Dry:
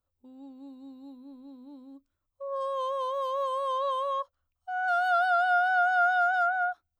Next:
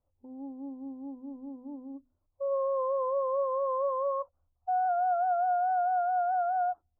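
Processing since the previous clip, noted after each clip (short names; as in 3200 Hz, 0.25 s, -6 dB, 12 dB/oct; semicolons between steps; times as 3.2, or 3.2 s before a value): compressor, threshold -29 dBFS, peak gain reduction 9 dB; Chebyshev low-pass 850 Hz, order 3; notches 50/100/150/200/250 Hz; gain +6.5 dB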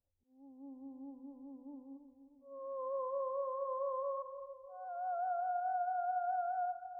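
low-pass opened by the level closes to 770 Hz; auto swell 0.531 s; split-band echo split 1000 Hz, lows 0.311 s, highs 0.125 s, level -10.5 dB; gain -9 dB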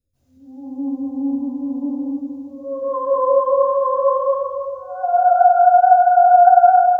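reverb RT60 1.1 s, pre-delay 0.13 s, DRR -20 dB; gain +4 dB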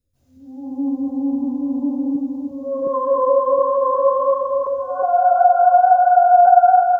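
regenerating reverse delay 0.359 s, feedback 65%, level -11.5 dB; in parallel at +1 dB: compressor, threshold -19 dBFS, peak gain reduction 14.5 dB; on the sum: gain -4 dB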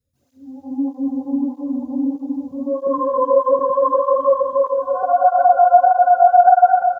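on a send: feedback echo 0.829 s, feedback 27%, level -9 dB; on the sum: tape flanging out of phase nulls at 1.6 Hz, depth 3.6 ms; gain +3 dB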